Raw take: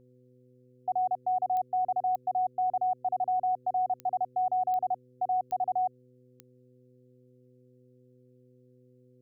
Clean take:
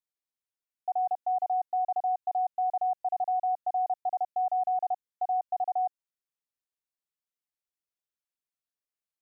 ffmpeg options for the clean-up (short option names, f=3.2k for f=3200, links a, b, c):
-af "adeclick=t=4,bandreject=f=125.6:t=h:w=4,bandreject=f=251.2:t=h:w=4,bandreject=f=376.8:t=h:w=4,bandreject=f=502.4:t=h:w=4"